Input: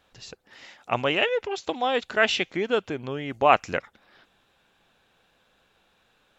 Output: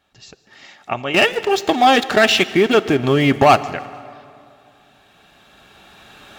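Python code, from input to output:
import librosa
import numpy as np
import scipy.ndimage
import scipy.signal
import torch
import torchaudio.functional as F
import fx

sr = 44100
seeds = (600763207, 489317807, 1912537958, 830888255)

y = fx.recorder_agc(x, sr, target_db=-9.0, rise_db_per_s=8.7, max_gain_db=30)
y = fx.leveller(y, sr, passes=3, at=(1.14, 3.62))
y = fx.notch_comb(y, sr, f0_hz=500.0)
y = fx.echo_feedback(y, sr, ms=152, feedback_pct=49, wet_db=-22.0)
y = fx.rev_plate(y, sr, seeds[0], rt60_s=2.7, hf_ratio=0.7, predelay_ms=0, drr_db=16.0)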